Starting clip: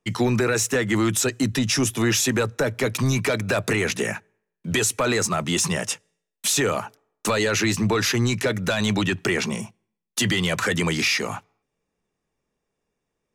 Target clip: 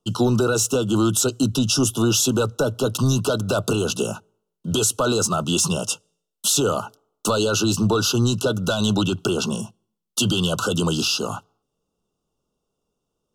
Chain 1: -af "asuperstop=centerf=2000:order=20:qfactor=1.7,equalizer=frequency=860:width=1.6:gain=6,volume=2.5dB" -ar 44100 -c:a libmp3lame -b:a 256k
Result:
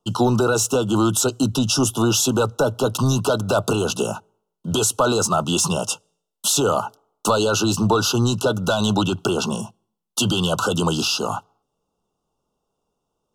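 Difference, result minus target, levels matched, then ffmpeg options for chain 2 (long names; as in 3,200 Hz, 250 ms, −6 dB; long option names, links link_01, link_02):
1,000 Hz band +4.0 dB
-af "asuperstop=centerf=2000:order=20:qfactor=1.7,equalizer=frequency=860:width=1.6:gain=-2,volume=2.5dB" -ar 44100 -c:a libmp3lame -b:a 256k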